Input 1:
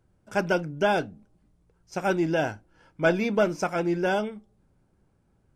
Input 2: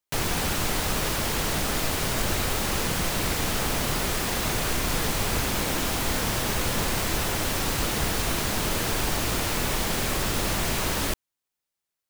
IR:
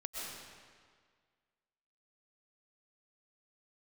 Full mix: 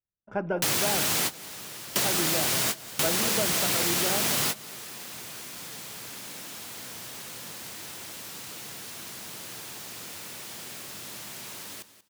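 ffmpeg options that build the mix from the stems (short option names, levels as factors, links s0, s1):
-filter_complex "[0:a]agate=range=0.02:threshold=0.00141:ratio=16:detection=peak,lowpass=1100,volume=0.891,asplit=3[s0][s1][s2];[s1]volume=0.266[s3];[1:a]highpass=f=110:w=0.5412,highpass=f=110:w=1.3066,adelay=500,volume=1.41,asplit=2[s4][s5];[s5]volume=0.075[s6];[s2]apad=whole_len=555374[s7];[s4][s7]sidechaingate=range=0.0224:threshold=0.00178:ratio=16:detection=peak[s8];[s3][s6]amix=inputs=2:normalize=0,aecho=0:1:185|370|555:1|0.19|0.0361[s9];[s0][s8][s9]amix=inputs=3:normalize=0,highshelf=f=2100:g=9.5,acompressor=threshold=0.0501:ratio=2.5"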